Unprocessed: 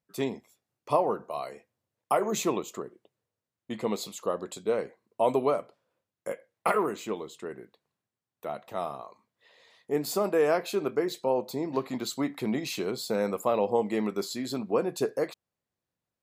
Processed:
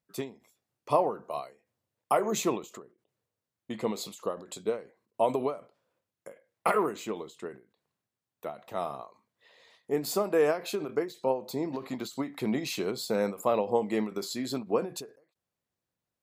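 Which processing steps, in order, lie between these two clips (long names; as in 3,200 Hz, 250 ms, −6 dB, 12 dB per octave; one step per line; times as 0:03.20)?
every ending faded ahead of time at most 170 dB per second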